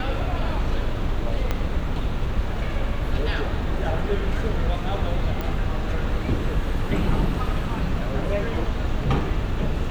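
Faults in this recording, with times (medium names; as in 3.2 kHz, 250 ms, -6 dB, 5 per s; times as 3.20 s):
1.51 s: pop -11 dBFS
5.41 s: pop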